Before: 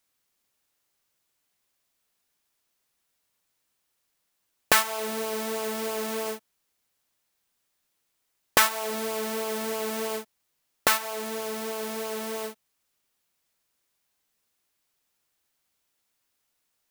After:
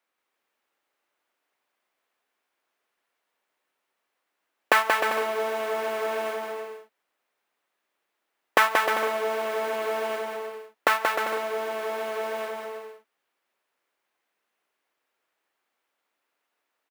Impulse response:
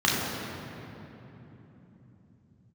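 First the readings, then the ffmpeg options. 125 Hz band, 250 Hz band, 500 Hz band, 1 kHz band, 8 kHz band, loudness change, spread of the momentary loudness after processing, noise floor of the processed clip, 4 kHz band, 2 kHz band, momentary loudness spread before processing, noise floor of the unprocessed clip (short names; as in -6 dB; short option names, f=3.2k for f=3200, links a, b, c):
n/a, -5.5 dB, +4.0 dB, +5.5 dB, -9.5 dB, +1.0 dB, 15 LU, -81 dBFS, -3.0 dB, +4.0 dB, 11 LU, -77 dBFS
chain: -filter_complex "[0:a]acrossover=split=280 2700:gain=0.0794 1 0.158[a][b][c];[a][b][c]amix=inputs=3:normalize=0,aecho=1:1:180|306|394.2|455.9|499.2:0.631|0.398|0.251|0.158|0.1,volume=3.5dB"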